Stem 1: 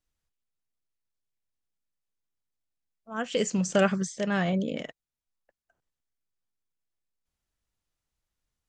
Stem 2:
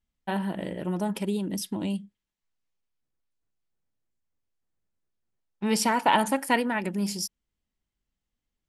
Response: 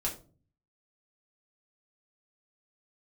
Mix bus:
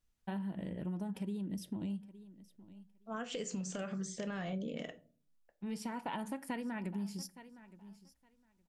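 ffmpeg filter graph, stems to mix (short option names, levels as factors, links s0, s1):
-filter_complex "[0:a]acompressor=threshold=0.0562:ratio=6,alimiter=level_in=1.33:limit=0.0631:level=0:latency=1:release=263,volume=0.75,volume=0.668,asplit=3[s0][s1][s2];[s1]volume=0.376[s3];[1:a]bass=f=250:g=11,treble=f=4000:g=-3,volume=0.251,asplit=3[s4][s5][s6];[s5]volume=0.0944[s7];[s6]volume=0.0891[s8];[s2]apad=whole_len=382992[s9];[s4][s9]sidechaincompress=threshold=0.00112:ratio=4:attack=16:release=1060[s10];[2:a]atrim=start_sample=2205[s11];[s3][s7]amix=inputs=2:normalize=0[s12];[s12][s11]afir=irnorm=-1:irlink=0[s13];[s8]aecho=0:1:865|1730|2595:1|0.15|0.0225[s14];[s0][s10][s13][s14]amix=inputs=4:normalize=0,acompressor=threshold=0.0158:ratio=6"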